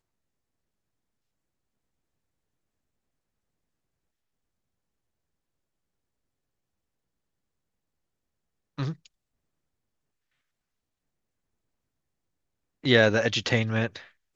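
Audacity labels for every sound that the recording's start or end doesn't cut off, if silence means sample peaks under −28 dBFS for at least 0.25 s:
8.790000	8.910000	sound
12.850000	13.960000	sound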